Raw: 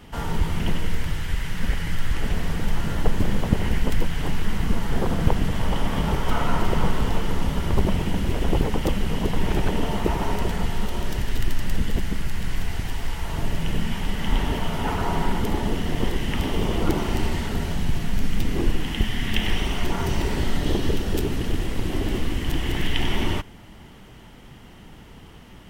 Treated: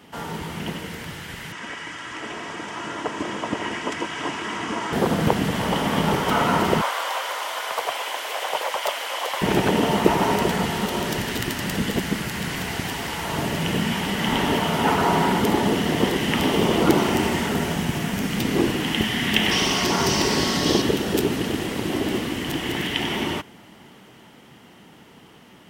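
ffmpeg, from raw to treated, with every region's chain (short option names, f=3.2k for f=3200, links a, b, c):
-filter_complex "[0:a]asettb=1/sr,asplit=3[a][b][c];[a]atrim=end=1.524[d];[b]atrim=start=1.52:end=4.93,asetpts=PTS-STARTPTS,afade=t=in:d=0.004:c=qsin,afade=t=out:st=3.406:d=0.004:c=qsin,highpass=170,equalizer=f=180:t=q:w=4:g=-8,equalizer=f=250:t=q:w=4:g=-6,equalizer=f=400:t=q:w=4:g=5,equalizer=f=600:t=q:w=4:g=-4,equalizer=f=1.1k:t=q:w=4:g=5,equalizer=f=4.2k:t=q:w=4:g=-8,lowpass=f=7.9k:w=0.5412,lowpass=f=7.9k:w=1.3066,bandreject=f=390:w=5.3,aecho=1:1:3.1:0.45,atrim=end_sample=150381[e];[c]atrim=start=4.926[f];[d][e]acrossfade=d=0.004:c1=hsin:c2=qsin[g];[g][f]acrossfade=d=0.004:c1=qsin:c2=hsin,asettb=1/sr,asplit=3[h][i][j];[h]atrim=end=6.814[k];[i]atrim=start=6.81:end=9.42,asetpts=PTS-STARTPTS,afade=t=in:d=0.004:c=qsin,afade=t=out:st=2.606:d=0.004:c=qsin,highpass=f=560:w=0.5412,highpass=f=560:w=1.3066,aeval=exprs='clip(val(0),-1,0.0668)':c=same,afreqshift=77[l];[j]atrim=start=9.416[m];[k][l]acrossfade=d=0.004:c1=hsin:c2=qsin[n];[n][m]acrossfade=d=0.004:c1=qsin:c2=hsin,asettb=1/sr,asplit=3[o][p][q];[o]atrim=end=17.094[r];[p]atrim=start=17.09:end=18.3,asetpts=PTS-STARTPTS,afade=t=in:d=0.004:c=qsin,afade=t=out:st=1.206:d=0.004:c=qsin,equalizer=f=4.2k:t=o:w=0.39:g=-5,acrusher=bits=8:mix=0:aa=0.5[s];[q]atrim=start=18.296[t];[r][s]acrossfade=d=0.004:c1=hsin:c2=qsin[u];[u][t]acrossfade=d=0.004:c1=qsin:c2=hsin,asettb=1/sr,asplit=3[v][w][x];[v]atrim=end=19.514[y];[w]atrim=start=19.51:end=20.82,asetpts=PTS-STARTPTS,afade=t=in:d=0.004:c=qsin,afade=t=out:st=1.306:d=0.004:c=qsin,equalizer=f=5.2k:w=1.9:g=12,aeval=exprs='val(0)+0.00891*sin(2*PI*1100*n/s)':c=same[z];[x]atrim=start=20.816[aa];[y][z]acrossfade=d=0.004:c1=hsin:c2=qsin[ab];[ab][aa]acrossfade=d=0.004:c1=qsin:c2=hsin,highpass=180,dynaudnorm=f=350:g=21:m=11.5dB"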